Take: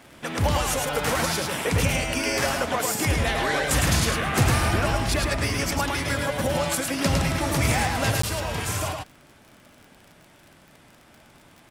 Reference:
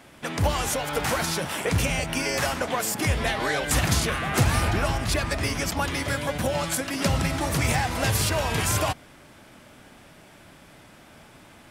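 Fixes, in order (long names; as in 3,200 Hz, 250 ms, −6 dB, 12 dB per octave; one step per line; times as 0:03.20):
click removal
repair the gap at 0:08.22, 14 ms
echo removal 107 ms −3.5 dB
level 0 dB, from 0:08.12 +5 dB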